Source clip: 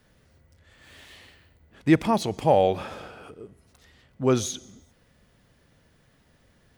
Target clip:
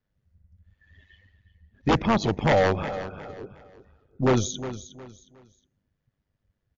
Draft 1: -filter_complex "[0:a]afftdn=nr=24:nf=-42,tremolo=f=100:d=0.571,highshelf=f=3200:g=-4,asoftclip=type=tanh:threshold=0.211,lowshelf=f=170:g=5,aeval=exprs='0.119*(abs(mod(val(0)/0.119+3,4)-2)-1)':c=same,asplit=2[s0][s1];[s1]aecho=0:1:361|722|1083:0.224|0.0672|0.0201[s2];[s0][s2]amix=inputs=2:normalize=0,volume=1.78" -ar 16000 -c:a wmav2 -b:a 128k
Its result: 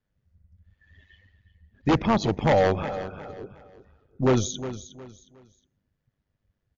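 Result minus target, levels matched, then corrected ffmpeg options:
saturation: distortion +16 dB
-filter_complex "[0:a]afftdn=nr=24:nf=-42,tremolo=f=100:d=0.571,highshelf=f=3200:g=-4,asoftclip=type=tanh:threshold=0.668,lowshelf=f=170:g=5,aeval=exprs='0.119*(abs(mod(val(0)/0.119+3,4)-2)-1)':c=same,asplit=2[s0][s1];[s1]aecho=0:1:361|722|1083:0.224|0.0672|0.0201[s2];[s0][s2]amix=inputs=2:normalize=0,volume=1.78" -ar 16000 -c:a wmav2 -b:a 128k

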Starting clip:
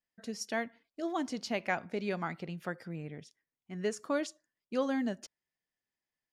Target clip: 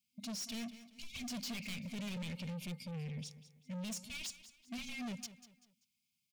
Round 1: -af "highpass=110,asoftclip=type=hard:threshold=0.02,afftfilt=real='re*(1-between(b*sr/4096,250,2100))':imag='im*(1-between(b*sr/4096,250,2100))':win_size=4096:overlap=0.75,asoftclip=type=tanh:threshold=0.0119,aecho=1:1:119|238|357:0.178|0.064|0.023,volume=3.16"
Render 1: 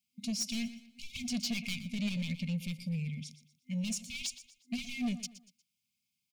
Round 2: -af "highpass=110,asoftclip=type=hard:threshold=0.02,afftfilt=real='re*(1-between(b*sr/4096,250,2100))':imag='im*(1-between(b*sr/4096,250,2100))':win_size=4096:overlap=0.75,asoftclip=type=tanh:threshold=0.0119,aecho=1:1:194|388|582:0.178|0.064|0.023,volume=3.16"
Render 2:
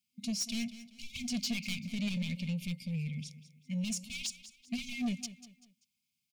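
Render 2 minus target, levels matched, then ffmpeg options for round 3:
saturation: distortion -9 dB
-af "highpass=110,asoftclip=type=hard:threshold=0.02,afftfilt=real='re*(1-between(b*sr/4096,250,2100))':imag='im*(1-between(b*sr/4096,250,2100))':win_size=4096:overlap=0.75,asoftclip=type=tanh:threshold=0.00316,aecho=1:1:194|388|582:0.178|0.064|0.023,volume=3.16"

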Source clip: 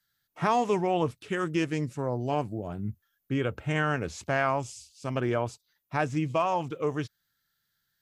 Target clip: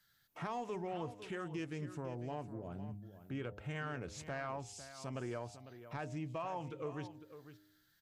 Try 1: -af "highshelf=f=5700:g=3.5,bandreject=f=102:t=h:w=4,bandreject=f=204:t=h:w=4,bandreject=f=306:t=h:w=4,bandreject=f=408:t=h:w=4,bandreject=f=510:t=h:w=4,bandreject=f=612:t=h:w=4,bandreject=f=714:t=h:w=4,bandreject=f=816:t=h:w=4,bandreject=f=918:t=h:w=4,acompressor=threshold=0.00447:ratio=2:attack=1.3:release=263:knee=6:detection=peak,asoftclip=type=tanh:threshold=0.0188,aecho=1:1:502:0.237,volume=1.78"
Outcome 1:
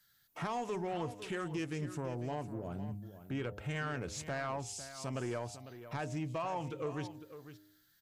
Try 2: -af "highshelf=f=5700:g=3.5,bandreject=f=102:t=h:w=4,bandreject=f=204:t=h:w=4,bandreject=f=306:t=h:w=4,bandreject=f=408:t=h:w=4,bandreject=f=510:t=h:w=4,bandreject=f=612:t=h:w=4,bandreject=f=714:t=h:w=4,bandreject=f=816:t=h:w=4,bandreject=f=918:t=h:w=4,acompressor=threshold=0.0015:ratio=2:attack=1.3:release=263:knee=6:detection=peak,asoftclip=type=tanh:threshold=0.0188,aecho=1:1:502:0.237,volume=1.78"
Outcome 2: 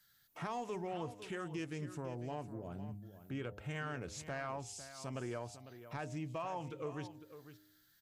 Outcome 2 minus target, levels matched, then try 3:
8 kHz band +3.0 dB
-af "highshelf=f=5700:g=-3.5,bandreject=f=102:t=h:w=4,bandreject=f=204:t=h:w=4,bandreject=f=306:t=h:w=4,bandreject=f=408:t=h:w=4,bandreject=f=510:t=h:w=4,bandreject=f=612:t=h:w=4,bandreject=f=714:t=h:w=4,bandreject=f=816:t=h:w=4,bandreject=f=918:t=h:w=4,acompressor=threshold=0.0015:ratio=2:attack=1.3:release=263:knee=6:detection=peak,asoftclip=type=tanh:threshold=0.0188,aecho=1:1:502:0.237,volume=1.78"

